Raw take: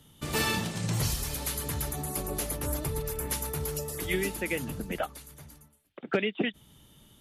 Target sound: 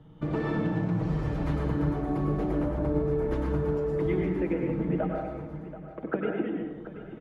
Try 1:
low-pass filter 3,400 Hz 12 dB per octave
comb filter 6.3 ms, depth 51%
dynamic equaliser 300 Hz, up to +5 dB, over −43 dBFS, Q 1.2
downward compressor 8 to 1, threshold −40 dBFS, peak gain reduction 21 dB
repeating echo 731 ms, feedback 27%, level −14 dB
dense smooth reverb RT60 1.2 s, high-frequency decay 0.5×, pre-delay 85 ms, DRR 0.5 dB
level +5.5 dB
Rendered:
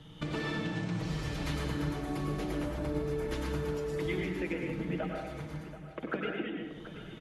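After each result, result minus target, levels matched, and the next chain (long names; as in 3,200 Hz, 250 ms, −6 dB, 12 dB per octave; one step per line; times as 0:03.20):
4,000 Hz band +16.0 dB; downward compressor: peak gain reduction +6.5 dB
low-pass filter 1,100 Hz 12 dB per octave
comb filter 6.3 ms, depth 51%
dynamic equaliser 300 Hz, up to +5 dB, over −43 dBFS, Q 1.2
downward compressor 8 to 1, threshold −40 dBFS, peak gain reduction 20.5 dB
repeating echo 731 ms, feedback 27%, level −14 dB
dense smooth reverb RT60 1.2 s, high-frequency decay 0.5×, pre-delay 85 ms, DRR 0.5 dB
level +5.5 dB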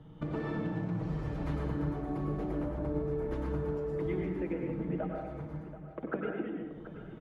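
downward compressor: peak gain reduction +6.5 dB
low-pass filter 1,100 Hz 12 dB per octave
comb filter 6.3 ms, depth 51%
dynamic equaliser 300 Hz, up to +5 dB, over −43 dBFS, Q 1.2
downward compressor 8 to 1, threshold −32.5 dBFS, peak gain reduction 14 dB
repeating echo 731 ms, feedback 27%, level −14 dB
dense smooth reverb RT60 1.2 s, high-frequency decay 0.5×, pre-delay 85 ms, DRR 0.5 dB
level +5.5 dB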